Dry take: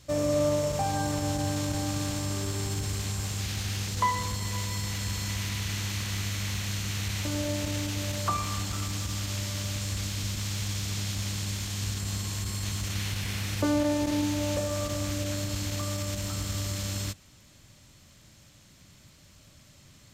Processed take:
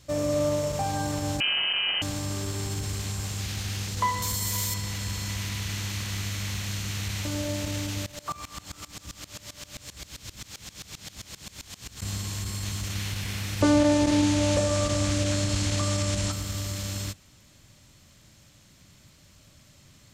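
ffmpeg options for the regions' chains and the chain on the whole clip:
-filter_complex "[0:a]asettb=1/sr,asplit=3[s0][s1][s2];[s0]atrim=end=1.404[s3];[s1]atrim=start=1.4:end=2.02,asetpts=PTS-STARTPTS,afade=t=in:d=0.004:c=qsin,afade=t=out:st=0.616:d=0.004:c=qsin,highpass=f=200:p=1,lowpass=f=2700:t=q:w=0.5098,lowpass=f=2700:t=q:w=0.6013,lowpass=f=2700:t=q:w=0.9,lowpass=f=2700:t=q:w=2.563,afreqshift=-3200,acontrast=71[s4];[s2]atrim=start=2.016[s5];[s3][s4]acrossfade=d=0.004:c1=hsin:c2=qsin[s6];[s6][s5]acrossfade=d=0.004:c1=qsin:c2=hsin,asettb=1/sr,asplit=3[s7][s8][s9];[s7]atrim=end=4.224[s10];[s8]atrim=start=4.22:end=4.74,asetpts=PTS-STARTPTS,afade=t=in:d=0.004:c=qsin,afade=t=out:st=0.516:d=0.004:c=qsin,aemphasis=mode=production:type=50fm,bandreject=f=2700:w=16[s11];[s9]atrim=start=4.736[s12];[s10][s11]acrossfade=d=0.004:c1=hsin:c2=qsin[s13];[s13][s12]acrossfade=d=0.004:c1=qsin:c2=hsin,asettb=1/sr,asplit=3[s14][s15][s16];[s14]atrim=end=8.064[s17];[s15]atrim=start=8.06:end=12.02,asetpts=PTS-STARTPTS,afade=t=in:d=0.004:c=qsin,afade=t=out:st=3.956:d=0.004:c=qsin,bandreject=f=50:t=h:w=6,bandreject=f=100:t=h:w=6,bandreject=f=150:t=h:w=6,bandreject=f=200:t=h:w=6,bandreject=f=250:t=h:w=6,bandreject=f=300:t=h:w=6,bandreject=f=350:t=h:w=6,bandreject=f=400:t=h:w=6,acrusher=bits=7:mode=log:mix=0:aa=0.000001,aeval=exprs='val(0)*pow(10,-22*if(lt(mod(-7.6*n/s,1),2*abs(-7.6)/1000),1-mod(-7.6*n/s,1)/(2*abs(-7.6)/1000),(mod(-7.6*n/s,1)-2*abs(-7.6)/1000)/(1-2*abs(-7.6)/1000))/20)':c=same[s18];[s16]atrim=start=12.016[s19];[s17][s18]acrossfade=d=0.004:c1=hsin:c2=qsin[s20];[s20][s19]acrossfade=d=0.004:c1=qsin:c2=hsin,asettb=1/sr,asplit=3[s21][s22][s23];[s21]atrim=end=13.614[s24];[s22]atrim=start=13.61:end=16.32,asetpts=PTS-STARTPTS,afade=t=in:d=0.004:c=qsin,afade=t=out:st=2.706:d=0.004:c=qsin,lowpass=f=10000:w=0.5412,lowpass=f=10000:w=1.3066,acontrast=39[s25];[s23]atrim=start=16.316[s26];[s24][s25]acrossfade=d=0.004:c1=hsin:c2=qsin[s27];[s27][s26]acrossfade=d=0.004:c1=qsin:c2=hsin"

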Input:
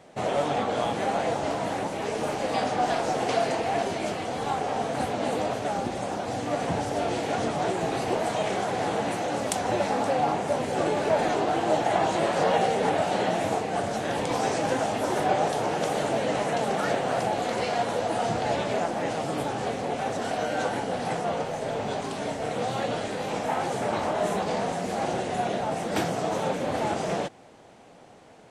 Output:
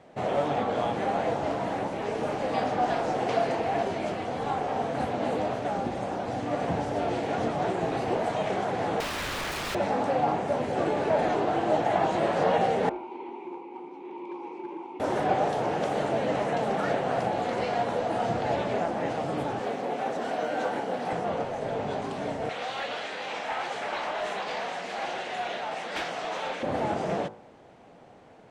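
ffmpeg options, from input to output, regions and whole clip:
-filter_complex "[0:a]asettb=1/sr,asplit=3[s0][s1][s2];[s0]atrim=end=9.004[s3];[s1]atrim=start=9:end=9.75,asetpts=PTS-STARTPTS,afade=t=in:d=0.004:c=qsin,afade=t=out:st=0.746:d=0.004:c=qsin,equalizer=f=1100:w=1:g=7.5,aecho=1:1:2.4:0.61,atrim=end_sample=33075,aeval=exprs='(mod(15*val(0)+1,2)-1)/15':c=same[s4];[s2]atrim=start=9.746[s5];[s3][s4]acrossfade=d=0.004:c1=hsin:c2=qsin[s6];[s6][s5]acrossfade=d=0.004:c1=qsin:c2=hsin,asettb=1/sr,asplit=3[s7][s8][s9];[s7]atrim=end=12.894[s10];[s8]atrim=start=12.89:end=15,asetpts=PTS-STARTPTS,afade=t=in:d=0.004:c=qsin,afade=t=out:st=2.106:d=0.004:c=qsin,asplit=3[s11][s12][s13];[s11]bandpass=f=300:t=q:w=8,volume=1[s14];[s12]bandpass=f=870:t=q:w=8,volume=0.501[s15];[s13]bandpass=f=2240:t=q:w=8,volume=0.355[s16];[s14][s15][s16]amix=inputs=3:normalize=0,afreqshift=59,asoftclip=type=hard:threshold=0.0335[s17];[s9]atrim=start=14.996[s18];[s10][s17]acrossfade=d=0.004:c1=hsin:c2=qsin[s19];[s19][s18]acrossfade=d=0.004:c1=qsin:c2=hsin,asettb=1/sr,asplit=3[s20][s21][s22];[s20]atrim=end=19.594[s23];[s21]atrim=start=19.59:end=21.13,asetpts=PTS-STARTPTS,afade=t=in:d=0.004:c=qsin,afade=t=out:st=1.536:d=0.004:c=qsin,highpass=210,acrusher=bits=8:mode=log:mix=0:aa=0.000001[s24];[s22]atrim=start=21.126[s25];[s23][s24]acrossfade=d=0.004:c1=hsin:c2=qsin[s26];[s26][s25]acrossfade=d=0.004:c1=qsin:c2=hsin,asettb=1/sr,asplit=3[s27][s28][s29];[s27]atrim=end=22.494[s30];[s28]atrim=start=22.49:end=26.63,asetpts=PTS-STARTPTS,afade=t=in:d=0.004:c=qsin,afade=t=out:st=4.136:d=0.004:c=qsin,acontrast=86,bandpass=f=3100:t=q:w=0.76,asoftclip=type=hard:threshold=0.0631[s31];[s29]atrim=start=26.626[s32];[s30][s31]acrossfade=d=0.004:c1=hsin:c2=qsin[s33];[s33][s32]acrossfade=d=0.004:c1=qsin:c2=hsin,lowpass=f=2200:p=1,bandreject=f=53.6:t=h:w=4,bandreject=f=107.2:t=h:w=4,bandreject=f=160.8:t=h:w=4,bandreject=f=214.4:t=h:w=4,bandreject=f=268:t=h:w=4,bandreject=f=321.6:t=h:w=4,bandreject=f=375.2:t=h:w=4,bandreject=f=428.8:t=h:w=4,bandreject=f=482.4:t=h:w=4,bandreject=f=536:t=h:w=4,bandreject=f=589.6:t=h:w=4,bandreject=f=643.2:t=h:w=4,bandreject=f=696.8:t=h:w=4,bandreject=f=750.4:t=h:w=4,bandreject=f=804:t=h:w=4,bandreject=f=857.6:t=h:w=4,bandreject=f=911.2:t=h:w=4,bandreject=f=964.8:t=h:w=4,bandreject=f=1018.4:t=h:w=4,bandreject=f=1072:t=h:w=4,bandreject=f=1125.6:t=h:w=4,bandreject=f=1179.2:t=h:w=4,bandreject=f=1232.8:t=h:w=4,bandreject=f=1286.4:t=h:w=4,bandreject=f=1340:t=h:w=4,bandreject=f=1393.6:t=h:w=4,bandreject=f=1447.2:t=h:w=4,bandreject=f=1500.8:t=h:w=4,bandreject=f=1554.4:t=h:w=4"

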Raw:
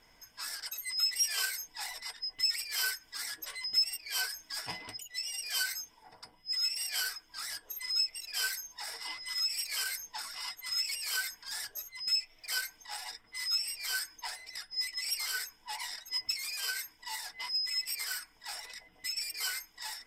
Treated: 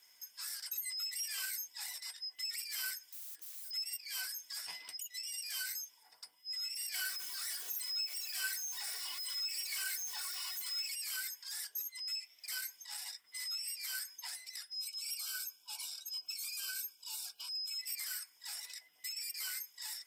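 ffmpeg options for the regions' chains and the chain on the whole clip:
-filter_complex "[0:a]asettb=1/sr,asplit=3[s0][s1][s2];[s0]atrim=end=3.054[s3];[s1]atrim=start=3.05:end=3.71,asetpts=PTS-STARTPTS,afade=t=in:d=0.004:c=qsin,afade=t=out:st=0.656:d=0.004:c=qsin,lowshelf=f=460:g=-2.5,acompressor=threshold=0.00398:ratio=2:attack=3.2:release=140:knee=1:detection=peak,aeval=exprs='(mod(316*val(0)+1,2)-1)/316':c=same[s4];[s2]atrim=start=3.706[s5];[s3][s4]acrossfade=d=0.004:c1=hsin:c2=qsin[s6];[s6][s5]acrossfade=d=0.004:c1=qsin:c2=hsin,asettb=1/sr,asplit=3[s7][s8][s9];[s7]atrim=end=6.944[s10];[s8]atrim=start=6.94:end=10.88,asetpts=PTS-STARTPTS,afade=t=in:d=0.004:c=qsin,afade=t=out:st=3.936:d=0.004:c=qsin,aeval=exprs='val(0)+0.5*0.0106*sgn(val(0))':c=same,aecho=1:1:2.7:0.77,atrim=end_sample=173754[s11];[s9]atrim=start=10.876[s12];[s10][s11]acrossfade=d=0.004:c1=hsin:c2=qsin[s13];[s13][s12]acrossfade=d=0.004:c1=qsin:c2=hsin,asettb=1/sr,asplit=3[s14][s15][s16];[s14]atrim=end=14.734[s17];[s15]atrim=start=14.73:end=17.79,asetpts=PTS-STARTPTS,afade=t=in:d=0.004:c=qsin,afade=t=out:st=3.056:d=0.004:c=qsin,asuperstop=centerf=1900:order=20:qfactor=3.2,equalizer=f=940:w=6.2:g=-7[s18];[s16]atrim=start=17.786[s19];[s17][s18]acrossfade=d=0.004:c1=hsin:c2=qsin[s20];[s20][s19]acrossfade=d=0.004:c1=qsin:c2=hsin,lowshelf=f=360:g=5,acrossover=split=2600[s21][s22];[s22]acompressor=threshold=0.00708:ratio=4:attack=1:release=60[s23];[s21][s23]amix=inputs=2:normalize=0,aderivative,volume=1.68"

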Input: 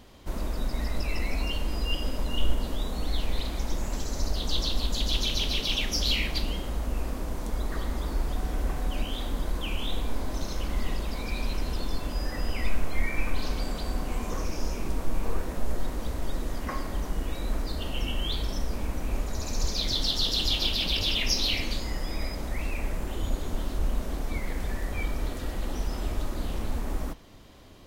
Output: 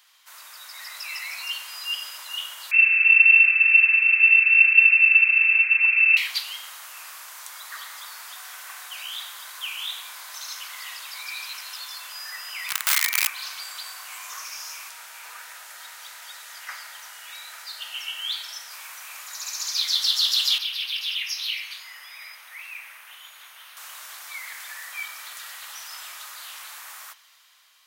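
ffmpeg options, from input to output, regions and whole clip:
-filter_complex "[0:a]asettb=1/sr,asplit=3[s0][s1][s2];[s0]atrim=end=2.714[s3];[s1]atrim=start=2.71:end=6.17,asetpts=PTS-STARTPTS,afade=t=in:d=0.004:c=qsin,afade=t=out:st=3.456:d=0.004:c=qsin,lowshelf=f=420:g=5.5,lowpass=f=2300:t=q:w=0.5098,lowpass=f=2300:t=q:w=0.6013,lowpass=f=2300:t=q:w=0.9,lowpass=f=2300:t=q:w=2.563,afreqshift=-2700[s4];[s2]atrim=start=6.166[s5];[s3][s4]acrossfade=d=0.004:c1=hsin:c2=qsin[s6];[s6][s5]acrossfade=d=0.004:c1=qsin:c2=hsin,asettb=1/sr,asplit=3[s7][s8][s9];[s7]atrim=end=12.694[s10];[s8]atrim=start=12.69:end=13.27,asetpts=PTS-STARTPTS,afade=t=in:d=0.004:c=qsin,afade=t=out:st=0.576:d=0.004:c=qsin,aecho=1:1:1:0.31,atrim=end_sample=25578,aeval=exprs='(mod(10.6*val(0)+1,2)-1)/10.6':c=same[s11];[s9]atrim=start=13.266[s12];[s10][s11]acrossfade=d=0.004:c1=hsin:c2=qsin[s13];[s13][s12]acrossfade=d=0.004:c1=qsin:c2=hsin,asettb=1/sr,asplit=3[s14][s15][s16];[s14]atrim=end=14.894[s17];[s15]atrim=start=14.89:end=18.71,asetpts=PTS-STARTPTS,afade=t=in:d=0.004:c=qsin,afade=t=out:st=3.816:d=0.004:c=qsin,asuperstop=centerf=1100:order=4:qfactor=7.5,highshelf=f=8600:g=-5.5[s18];[s16]atrim=start=18.706[s19];[s17][s18]acrossfade=d=0.004:c1=hsin:c2=qsin[s20];[s20][s19]acrossfade=d=0.004:c1=qsin:c2=hsin,asettb=1/sr,asplit=3[s21][s22][s23];[s21]atrim=end=20.584[s24];[s22]atrim=start=20.58:end=23.77,asetpts=PTS-STARTPTS,afade=t=in:d=0.004:c=qsin,afade=t=out:st=3.186:d=0.004:c=qsin,acrossover=split=120|3000[s25][s26][s27];[s26]acompressor=threshold=0.00708:ratio=4:attack=3.2:release=140:knee=2.83:detection=peak[s28];[s25][s28][s27]amix=inputs=3:normalize=0,highshelf=f=3500:t=q:w=1.5:g=-8,bandreject=f=7400:w=5.1[s29];[s23]atrim=start=23.766[s30];[s24][s29]acrossfade=d=0.004:c1=hsin:c2=qsin[s31];[s31][s30]acrossfade=d=0.004:c1=qsin:c2=hsin,highpass=f=1200:w=0.5412,highpass=f=1200:w=1.3066,highshelf=f=8000:g=7,dynaudnorm=f=120:g=13:m=1.78"

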